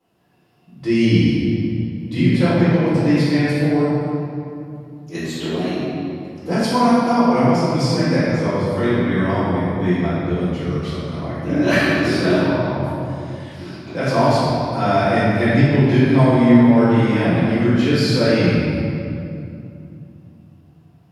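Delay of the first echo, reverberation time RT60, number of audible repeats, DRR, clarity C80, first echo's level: none, 2.6 s, none, -14.0 dB, -2.0 dB, none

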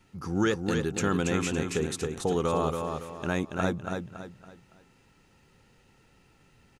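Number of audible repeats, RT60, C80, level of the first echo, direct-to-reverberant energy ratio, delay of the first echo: 4, none, none, -5.0 dB, none, 0.28 s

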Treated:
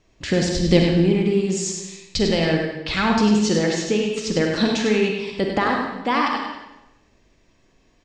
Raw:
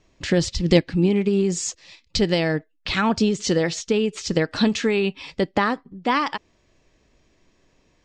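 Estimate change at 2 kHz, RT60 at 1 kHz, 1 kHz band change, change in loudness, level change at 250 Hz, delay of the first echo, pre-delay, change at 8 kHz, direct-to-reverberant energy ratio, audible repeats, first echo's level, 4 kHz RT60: +2.0 dB, 0.95 s, +2.0 dB, +1.5 dB, +2.0 dB, 0.1 s, 37 ms, +1.5 dB, 0.5 dB, 2, -7.0 dB, 0.85 s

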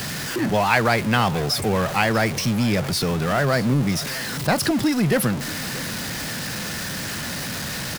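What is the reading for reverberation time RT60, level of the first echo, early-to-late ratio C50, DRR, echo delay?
none, -18.0 dB, none, none, 0.635 s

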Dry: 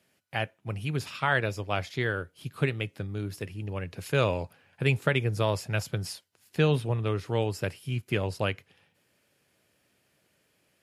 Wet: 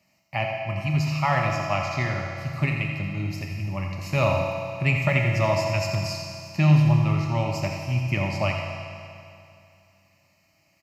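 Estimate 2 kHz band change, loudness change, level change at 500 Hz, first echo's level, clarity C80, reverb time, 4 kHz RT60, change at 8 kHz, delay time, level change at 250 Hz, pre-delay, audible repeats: +3.5 dB, +5.5 dB, +2.5 dB, -9.0 dB, 2.0 dB, 2.6 s, 2.5 s, +3.5 dB, 86 ms, +6.5 dB, 6 ms, 1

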